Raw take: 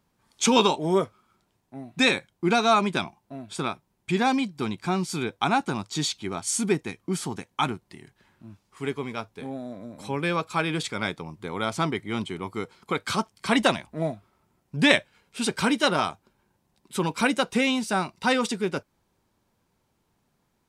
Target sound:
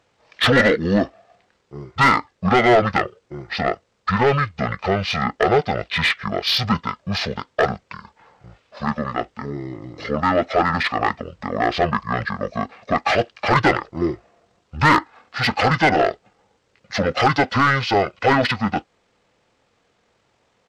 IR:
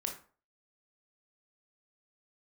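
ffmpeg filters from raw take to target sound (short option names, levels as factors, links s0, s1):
-filter_complex "[0:a]asetrate=23361,aresample=44100,atempo=1.88775,asplit=2[s0][s1];[s1]highpass=f=720:p=1,volume=12.6,asoftclip=type=tanh:threshold=0.596[s2];[s0][s2]amix=inputs=2:normalize=0,lowpass=f=2800:p=1,volume=0.501"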